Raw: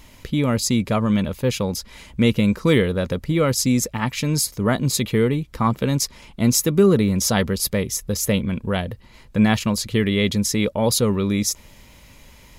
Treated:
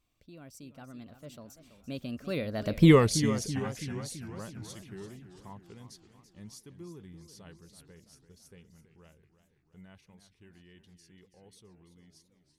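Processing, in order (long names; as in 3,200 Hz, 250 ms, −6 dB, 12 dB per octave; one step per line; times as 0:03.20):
source passing by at 0:02.87, 49 m/s, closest 2.8 metres
feedback echo with a swinging delay time 335 ms, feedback 58%, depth 146 cents, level −12 dB
level +4 dB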